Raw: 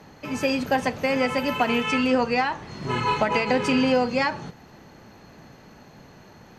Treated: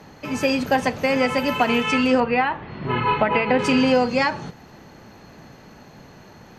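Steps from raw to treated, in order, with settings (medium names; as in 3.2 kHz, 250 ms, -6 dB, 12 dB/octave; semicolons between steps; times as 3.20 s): 2.20–3.59 s: low-pass 3.2 kHz 24 dB/octave; trim +3 dB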